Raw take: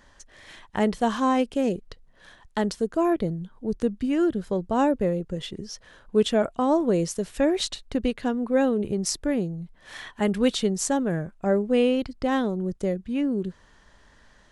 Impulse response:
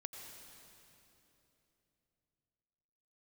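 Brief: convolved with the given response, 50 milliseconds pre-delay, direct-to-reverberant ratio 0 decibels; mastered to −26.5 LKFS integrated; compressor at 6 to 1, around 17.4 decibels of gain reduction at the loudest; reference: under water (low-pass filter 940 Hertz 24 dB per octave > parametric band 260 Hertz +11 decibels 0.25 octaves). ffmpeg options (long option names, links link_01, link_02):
-filter_complex "[0:a]acompressor=threshold=-36dB:ratio=6,asplit=2[link_01][link_02];[1:a]atrim=start_sample=2205,adelay=50[link_03];[link_02][link_03]afir=irnorm=-1:irlink=0,volume=3dB[link_04];[link_01][link_04]amix=inputs=2:normalize=0,lowpass=frequency=940:width=0.5412,lowpass=frequency=940:width=1.3066,equalizer=frequency=260:width_type=o:width=0.25:gain=11,volume=6dB"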